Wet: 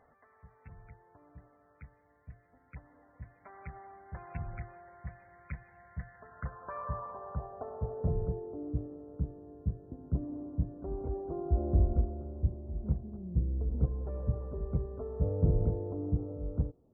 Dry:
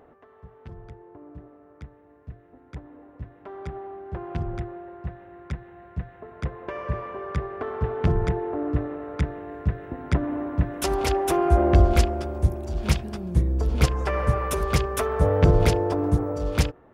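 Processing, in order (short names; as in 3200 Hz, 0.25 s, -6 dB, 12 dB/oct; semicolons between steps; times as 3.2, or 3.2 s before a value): low-pass sweep 2300 Hz -> 360 Hz, 5.78–8.58; loudest bins only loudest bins 64; bell 350 Hz -14 dB 0.67 oct; gain -9 dB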